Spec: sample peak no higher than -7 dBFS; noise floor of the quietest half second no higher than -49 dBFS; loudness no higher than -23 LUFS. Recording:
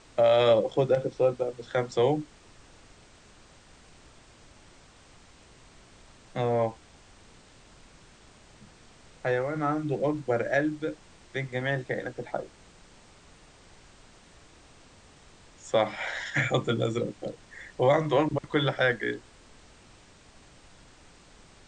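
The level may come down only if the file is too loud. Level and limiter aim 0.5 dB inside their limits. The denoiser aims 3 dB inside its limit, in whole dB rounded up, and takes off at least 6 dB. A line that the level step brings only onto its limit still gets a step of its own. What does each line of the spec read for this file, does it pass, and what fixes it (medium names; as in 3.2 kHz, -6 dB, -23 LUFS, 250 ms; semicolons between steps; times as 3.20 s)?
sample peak -11.5 dBFS: pass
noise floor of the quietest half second -55 dBFS: pass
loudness -27.5 LUFS: pass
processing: none needed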